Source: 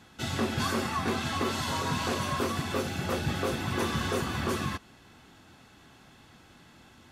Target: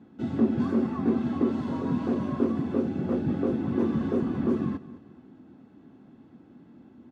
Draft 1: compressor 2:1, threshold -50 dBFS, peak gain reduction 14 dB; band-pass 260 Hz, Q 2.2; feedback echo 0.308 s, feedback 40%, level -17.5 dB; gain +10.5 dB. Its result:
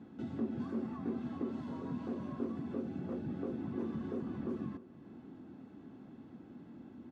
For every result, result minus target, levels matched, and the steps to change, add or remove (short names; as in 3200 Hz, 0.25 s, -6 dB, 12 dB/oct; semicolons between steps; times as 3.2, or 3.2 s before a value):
compressor: peak gain reduction +14 dB; echo 93 ms late
remove: compressor 2:1, threshold -50 dBFS, peak gain reduction 14 dB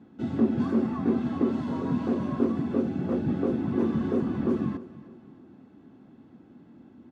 echo 93 ms late
change: feedback echo 0.215 s, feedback 40%, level -17.5 dB